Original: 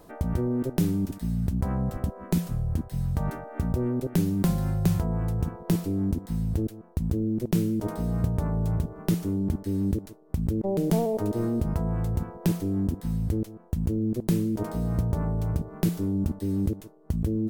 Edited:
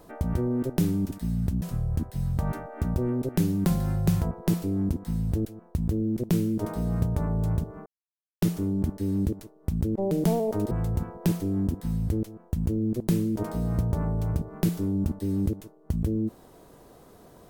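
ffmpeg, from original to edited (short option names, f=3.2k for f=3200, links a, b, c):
-filter_complex "[0:a]asplit=5[a][b][c][d][e];[a]atrim=end=1.622[f];[b]atrim=start=2.398:end=5.092[g];[c]atrim=start=5.528:end=9.08,asetpts=PTS-STARTPTS,afade=t=out:st=3.548:d=0.004:c=hsin,apad=pad_dur=0.56[h];[d]atrim=start=9.08:end=11.372,asetpts=PTS-STARTPTS,afade=t=in:d=0.004:c=hsin[i];[e]atrim=start=11.908[j];[f][g]acrossfade=d=0.004:c1=hsin:c2=hsin[k];[h][i]concat=n=2:v=0:a=1[l];[k][l]acrossfade=d=0.004:c1=hsin:c2=hsin[m];[m][j]acrossfade=d=0.004:c1=hsin:c2=hsin"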